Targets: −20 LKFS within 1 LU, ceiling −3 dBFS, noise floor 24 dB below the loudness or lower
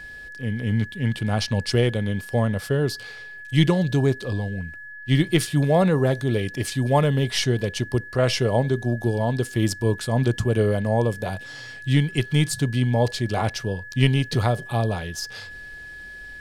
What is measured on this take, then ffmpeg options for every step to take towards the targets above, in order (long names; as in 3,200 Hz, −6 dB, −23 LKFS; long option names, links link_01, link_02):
interfering tone 1,700 Hz; level of the tone −37 dBFS; integrated loudness −23.0 LKFS; sample peak −4.0 dBFS; target loudness −20.0 LKFS
→ -af "bandreject=frequency=1700:width=30"
-af "volume=3dB,alimiter=limit=-3dB:level=0:latency=1"